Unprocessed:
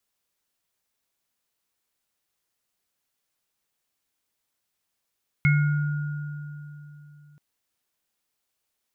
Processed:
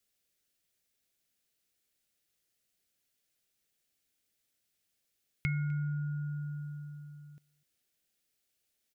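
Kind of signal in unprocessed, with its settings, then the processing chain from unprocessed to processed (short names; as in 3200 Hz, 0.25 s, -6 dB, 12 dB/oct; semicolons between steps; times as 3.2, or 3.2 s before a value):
sine partials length 1.93 s, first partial 147 Hz, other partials 1430/2170 Hz, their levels -11.5/-4 dB, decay 3.34 s, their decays 2.80/0.49 s, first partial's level -16 dB
bell 1000 Hz -13.5 dB 0.73 oct; compressor 2.5:1, threshold -36 dBFS; echo 0.252 s -24 dB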